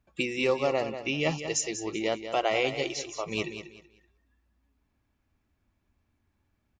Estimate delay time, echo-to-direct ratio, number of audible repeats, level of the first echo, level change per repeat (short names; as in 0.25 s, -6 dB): 0.19 s, -9.5 dB, 3, -10.0 dB, -11.5 dB